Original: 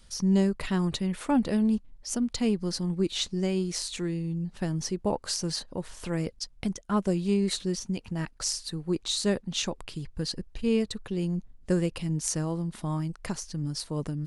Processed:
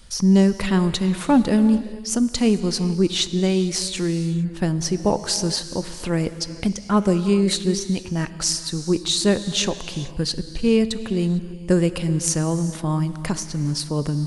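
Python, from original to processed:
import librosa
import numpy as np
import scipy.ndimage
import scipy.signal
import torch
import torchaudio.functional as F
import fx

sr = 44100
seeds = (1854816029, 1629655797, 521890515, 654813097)

y = fx.rev_gated(x, sr, seeds[0], gate_ms=480, shape='flat', drr_db=11.5)
y = y * 10.0 ** (8.0 / 20.0)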